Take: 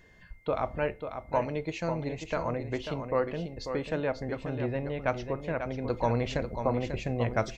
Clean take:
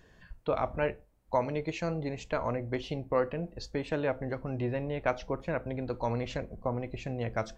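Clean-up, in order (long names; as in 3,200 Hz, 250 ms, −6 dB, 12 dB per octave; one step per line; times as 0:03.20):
notch filter 2,100 Hz, Q 30
echo removal 542 ms −8 dB
level correction −4 dB, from 0:05.84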